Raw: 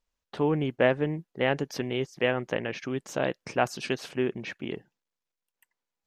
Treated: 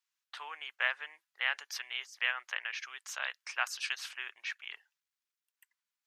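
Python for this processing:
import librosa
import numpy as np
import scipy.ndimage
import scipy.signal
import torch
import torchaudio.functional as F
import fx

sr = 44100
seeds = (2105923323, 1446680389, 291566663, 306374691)

y = scipy.signal.sosfilt(scipy.signal.butter(4, 1200.0, 'highpass', fs=sr, output='sos'), x)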